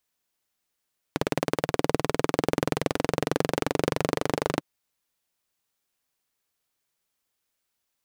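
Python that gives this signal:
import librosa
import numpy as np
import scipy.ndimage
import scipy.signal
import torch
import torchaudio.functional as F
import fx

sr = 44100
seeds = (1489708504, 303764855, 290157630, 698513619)

y = fx.engine_single_rev(sr, seeds[0], length_s=3.45, rpm=2200, resonances_hz=(160.0, 290.0, 430.0), end_rpm=3000)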